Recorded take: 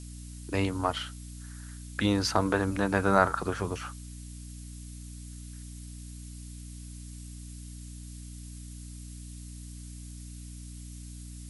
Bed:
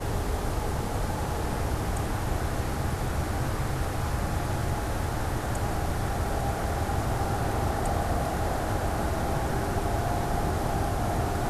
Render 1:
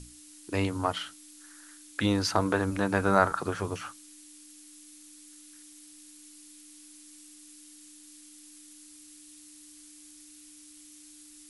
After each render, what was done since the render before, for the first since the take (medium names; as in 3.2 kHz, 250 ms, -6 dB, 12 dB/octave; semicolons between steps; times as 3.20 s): hum notches 60/120/180/240 Hz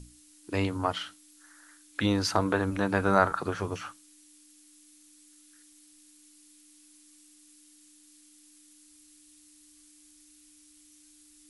noise print and reduce 6 dB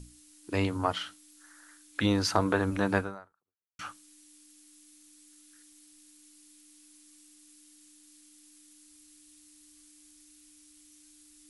2.98–3.79 s: fade out exponential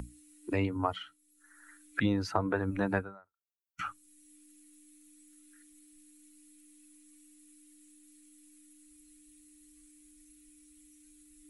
expander on every frequency bin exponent 1.5; three bands compressed up and down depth 70%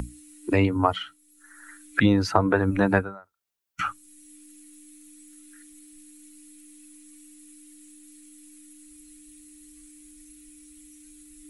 trim +9.5 dB